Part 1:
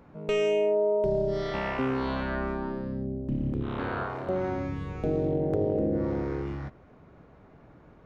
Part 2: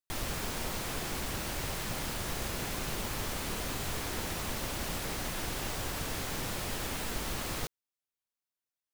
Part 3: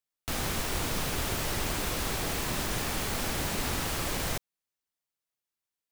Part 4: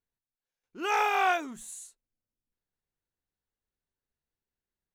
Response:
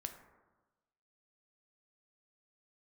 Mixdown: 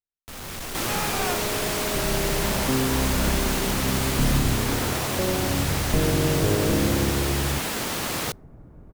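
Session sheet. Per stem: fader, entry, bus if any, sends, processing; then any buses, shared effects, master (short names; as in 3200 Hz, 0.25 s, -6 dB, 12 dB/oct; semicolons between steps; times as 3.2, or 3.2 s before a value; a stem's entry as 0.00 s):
1.76 s -20 dB -> 2.4 s -9.5 dB, 0.90 s, no send, tilt -3.5 dB/oct
+2.0 dB, 0.65 s, send -23.5 dB, HPF 130 Hz
-13.0 dB, 0.00 s, no send, companded quantiser 2-bit
-13.0 dB, 0.00 s, no send, dry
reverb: on, RT60 1.2 s, pre-delay 3 ms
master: vibrato 0.56 Hz 8.2 cents; AGC gain up to 7 dB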